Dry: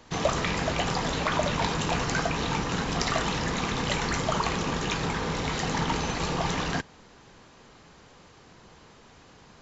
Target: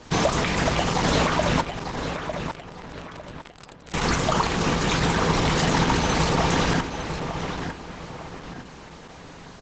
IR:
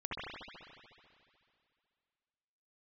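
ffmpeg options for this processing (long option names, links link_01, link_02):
-filter_complex "[0:a]alimiter=limit=-18.5dB:level=0:latency=1:release=273,asettb=1/sr,asplit=3[link_01][link_02][link_03];[link_01]atrim=end=1.614[link_04];[link_02]atrim=start=1.61:end=3.94,asetpts=PTS-STARTPTS,afade=type=in:duration=0.004:curve=qsin,afade=type=out:start_time=2.326:duration=0.004:curve=qsin,acrusher=bits=2:mix=0:aa=0.5[link_05];[link_03]atrim=start=3.936[link_06];[link_04][link_05]acrossfade=duration=0.004:curve1=hsin:curve2=qsin[link_07];[link_07][link_06]acrossfade=duration=0.004:curve1=qsin:curve2=hsin,asplit=2[link_08][link_09];[link_09]adelay=902,lowpass=frequency=4100:poles=1,volume=-7dB,asplit=2[link_10][link_11];[link_11]adelay=902,lowpass=frequency=4100:poles=1,volume=0.39,asplit=2[link_12][link_13];[link_13]adelay=902,lowpass=frequency=4100:poles=1,volume=0.39,asplit=2[link_14][link_15];[link_15]adelay=902,lowpass=frequency=4100:poles=1,volume=0.39,asplit=2[link_16][link_17];[link_17]adelay=902,lowpass=frequency=4100:poles=1,volume=0.39[link_18];[link_08][link_10][link_12][link_14][link_16][link_18]amix=inputs=6:normalize=0,volume=8.5dB" -ar 48000 -c:a libopus -b:a 12k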